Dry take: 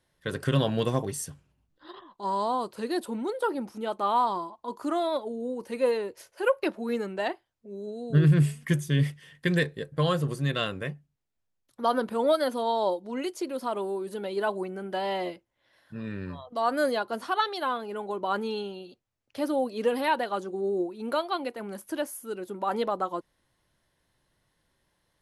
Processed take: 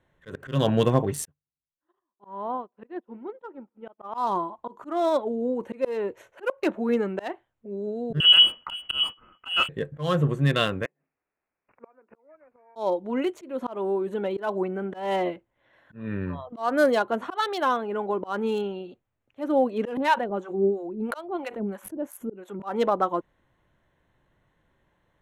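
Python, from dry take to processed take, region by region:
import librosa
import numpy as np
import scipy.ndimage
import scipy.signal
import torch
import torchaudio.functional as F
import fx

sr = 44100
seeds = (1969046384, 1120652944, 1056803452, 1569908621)

y = fx.chain(x, sr, fx.lowpass(hz=3100.0, slope=24),
    fx.echo_tape(ms=94, feedback_pct=83, wet_db=-22.5, lp_hz=1600.0, drive_db=18.0, wow_cents=19),
    fx.upward_expand(threshold_db=-48.0, expansion=2.5), at=(1.25, 4.18))
y = fx.chain(y, sr, fx.law_mismatch(coded='A'),
    fx.freq_invert(carrier_hz=3100), at=(8.2, 9.69))
y = fx.chain(y, sr, fx.highpass(hz=290.0, slope=24),
    fx.gate_flip(shuts_db=-24.0, range_db=-35),
    fx.resample_bad(factor=8, down='none', up='filtered'), at=(10.85, 12.76))
y = fx.chain(y, sr, fx.harmonic_tremolo(hz=3.0, depth_pct=100, crossover_hz=640.0),
    fx.low_shelf(hz=330.0, db=7.0),
    fx.pre_swell(db_per_s=140.0), at=(19.97, 22.6))
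y = fx.wiener(y, sr, points=9)
y = fx.auto_swell(y, sr, attack_ms=212.0)
y = y * 10.0 ** (6.0 / 20.0)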